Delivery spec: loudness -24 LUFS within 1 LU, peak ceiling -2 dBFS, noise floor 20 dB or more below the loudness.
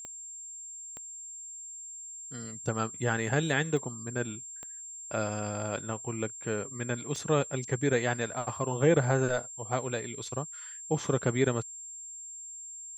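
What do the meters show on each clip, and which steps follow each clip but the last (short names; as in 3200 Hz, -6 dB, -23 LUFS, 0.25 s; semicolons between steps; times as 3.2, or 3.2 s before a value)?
clicks 5; steady tone 7400 Hz; tone level -41 dBFS; loudness -32.5 LUFS; peak -10.5 dBFS; loudness target -24.0 LUFS
-> de-click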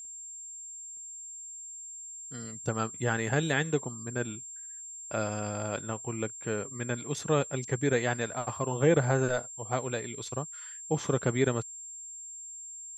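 clicks 0; steady tone 7400 Hz; tone level -41 dBFS
-> notch 7400 Hz, Q 30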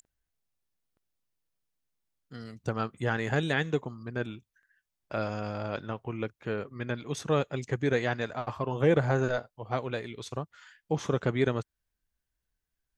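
steady tone none; loudness -31.5 LUFS; peak -11.0 dBFS; loudness target -24.0 LUFS
-> gain +7.5 dB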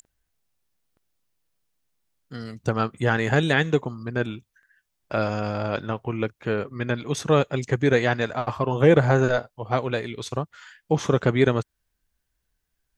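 loudness -24.0 LUFS; peak -3.5 dBFS; noise floor -78 dBFS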